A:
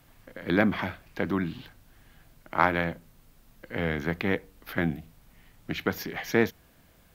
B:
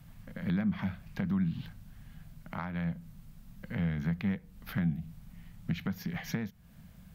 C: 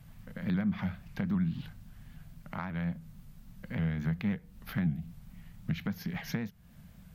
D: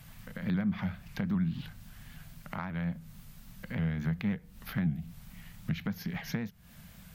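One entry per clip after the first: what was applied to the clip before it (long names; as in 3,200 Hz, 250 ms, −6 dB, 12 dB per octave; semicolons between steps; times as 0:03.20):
downward compressor 4 to 1, threshold −35 dBFS, peak gain reduction 16.5 dB; low shelf with overshoot 250 Hz +9 dB, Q 3; level −3 dB
pitch modulation by a square or saw wave saw up 3.7 Hz, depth 100 cents
one half of a high-frequency compander encoder only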